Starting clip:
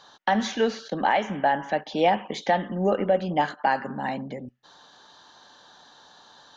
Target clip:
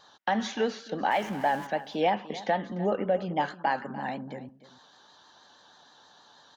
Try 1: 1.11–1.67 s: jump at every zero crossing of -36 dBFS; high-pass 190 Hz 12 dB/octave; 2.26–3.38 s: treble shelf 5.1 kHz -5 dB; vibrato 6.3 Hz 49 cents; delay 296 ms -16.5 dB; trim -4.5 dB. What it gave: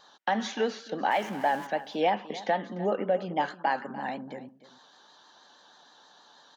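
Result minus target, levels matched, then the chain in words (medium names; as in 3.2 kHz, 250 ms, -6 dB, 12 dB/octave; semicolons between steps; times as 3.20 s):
125 Hz band -3.5 dB
1.11–1.67 s: jump at every zero crossing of -36 dBFS; high-pass 50 Hz 12 dB/octave; 2.26–3.38 s: treble shelf 5.1 kHz -5 dB; vibrato 6.3 Hz 49 cents; delay 296 ms -16.5 dB; trim -4.5 dB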